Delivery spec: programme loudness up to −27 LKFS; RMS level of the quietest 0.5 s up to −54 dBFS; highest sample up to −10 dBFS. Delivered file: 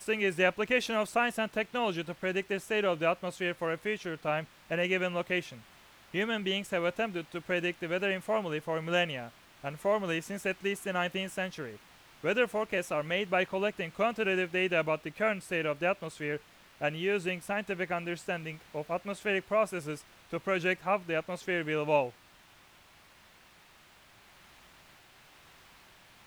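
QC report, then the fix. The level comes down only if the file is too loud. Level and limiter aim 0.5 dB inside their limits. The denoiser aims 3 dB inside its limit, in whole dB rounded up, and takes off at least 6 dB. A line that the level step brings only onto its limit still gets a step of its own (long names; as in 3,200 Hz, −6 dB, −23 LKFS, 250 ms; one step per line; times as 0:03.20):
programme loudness −31.5 LKFS: in spec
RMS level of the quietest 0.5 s −59 dBFS: in spec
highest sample −13.0 dBFS: in spec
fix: no processing needed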